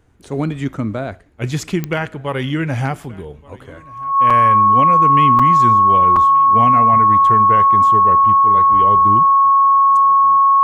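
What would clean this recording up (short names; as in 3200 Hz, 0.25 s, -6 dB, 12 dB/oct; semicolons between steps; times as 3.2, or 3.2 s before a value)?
de-click; notch 1100 Hz, Q 30; interpolate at 4.3/5.39/6.16, 5 ms; inverse comb 1.177 s -24 dB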